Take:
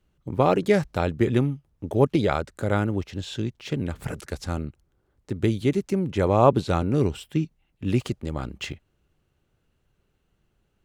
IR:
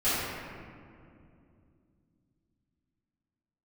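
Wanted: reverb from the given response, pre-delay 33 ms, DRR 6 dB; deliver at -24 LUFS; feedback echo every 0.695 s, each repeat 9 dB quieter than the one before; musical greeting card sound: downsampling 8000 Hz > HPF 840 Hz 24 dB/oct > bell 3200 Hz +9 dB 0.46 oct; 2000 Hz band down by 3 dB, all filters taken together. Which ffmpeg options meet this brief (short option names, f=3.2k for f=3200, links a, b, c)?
-filter_complex "[0:a]equalizer=f=2k:t=o:g=-6,aecho=1:1:695|1390|2085|2780:0.355|0.124|0.0435|0.0152,asplit=2[a][b];[1:a]atrim=start_sample=2205,adelay=33[c];[b][c]afir=irnorm=-1:irlink=0,volume=-19.5dB[d];[a][d]amix=inputs=2:normalize=0,aresample=8000,aresample=44100,highpass=f=840:w=0.5412,highpass=f=840:w=1.3066,equalizer=f=3.2k:t=o:w=0.46:g=9,volume=10.5dB"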